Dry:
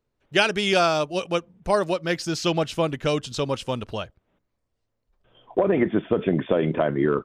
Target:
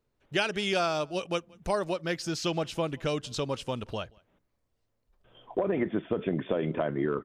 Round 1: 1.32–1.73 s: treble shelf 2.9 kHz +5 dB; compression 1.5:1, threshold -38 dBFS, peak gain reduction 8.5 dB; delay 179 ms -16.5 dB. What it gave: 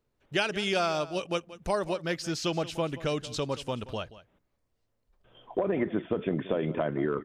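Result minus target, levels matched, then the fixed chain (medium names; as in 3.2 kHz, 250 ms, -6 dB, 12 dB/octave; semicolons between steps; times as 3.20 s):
echo-to-direct +11 dB
1.32–1.73 s: treble shelf 2.9 kHz +5 dB; compression 1.5:1, threshold -38 dBFS, peak gain reduction 8.5 dB; delay 179 ms -27.5 dB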